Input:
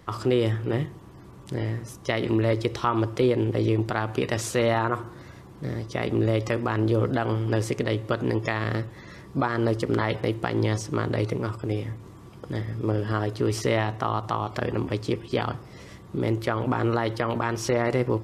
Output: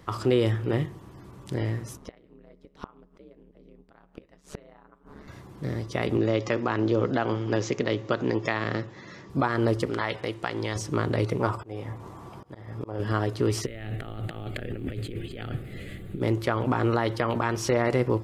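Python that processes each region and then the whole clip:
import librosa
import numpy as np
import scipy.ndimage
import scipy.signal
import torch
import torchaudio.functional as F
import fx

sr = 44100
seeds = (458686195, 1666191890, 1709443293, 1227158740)

y = fx.chain(x, sr, fx.high_shelf(hz=3400.0, db=-9.5),
    fx.gate_flip(shuts_db=-20.0, range_db=-27),
    fx.ring_mod(carrier_hz=72.0), at=(1.97, 5.28))
y = fx.chain(y, sr, fx.highpass(hz=140.0, slope=12),
    fx.resample_bad(factor=3, down='none', up='filtered'), at=(6.17, 9.3))
y = fx.chain(y, sr, fx.lowpass(hz=9600.0, slope=12),
    fx.low_shelf(hz=460.0, db=-10.0), at=(9.89, 10.76))
y = fx.chain(y, sr, fx.auto_swell(attack_ms=387.0),
    fx.peak_eq(hz=830.0, db=11.0, octaves=1.4), at=(11.4, 13.0))
y = fx.over_compress(y, sr, threshold_db=-33.0, ratio=-1.0, at=(13.65, 16.2), fade=0.02)
y = fx.dmg_noise_colour(y, sr, seeds[0], colour='brown', level_db=-44.0, at=(13.65, 16.2), fade=0.02)
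y = fx.fixed_phaser(y, sr, hz=2400.0, stages=4, at=(13.65, 16.2), fade=0.02)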